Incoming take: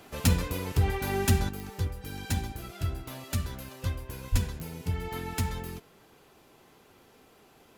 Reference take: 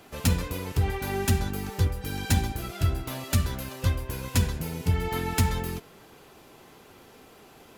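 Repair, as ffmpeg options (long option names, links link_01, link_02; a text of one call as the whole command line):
ffmpeg -i in.wav -filter_complex "[0:a]adeclick=threshold=4,asplit=3[link_01][link_02][link_03];[link_01]afade=type=out:start_time=4.31:duration=0.02[link_04];[link_02]highpass=frequency=140:width=0.5412,highpass=frequency=140:width=1.3066,afade=type=in:start_time=4.31:duration=0.02,afade=type=out:start_time=4.43:duration=0.02[link_05];[link_03]afade=type=in:start_time=4.43:duration=0.02[link_06];[link_04][link_05][link_06]amix=inputs=3:normalize=0,asetnsamples=nb_out_samples=441:pad=0,asendcmd='1.49 volume volume 6.5dB',volume=0dB" out.wav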